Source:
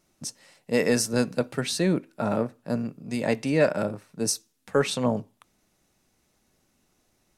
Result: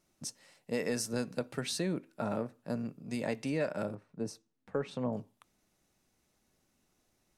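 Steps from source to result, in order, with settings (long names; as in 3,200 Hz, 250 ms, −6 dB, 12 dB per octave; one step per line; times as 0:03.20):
0:03.95–0:05.13: low-pass filter 1,000 Hz 6 dB per octave
downward compressor 2.5 to 1, threshold −25 dBFS, peak gain reduction 7 dB
level −6 dB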